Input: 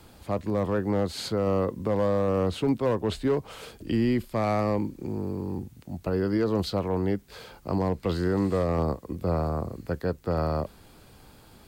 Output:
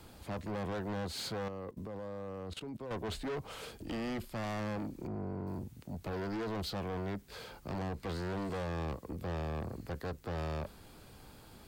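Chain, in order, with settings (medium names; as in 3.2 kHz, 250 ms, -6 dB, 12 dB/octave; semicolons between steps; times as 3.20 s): 1.48–2.91 s: level held to a coarse grid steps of 19 dB; 5.07–5.47 s: low-pass 1.2 kHz 6 dB/octave; saturation -32.5 dBFS, distortion -5 dB; trim -2.5 dB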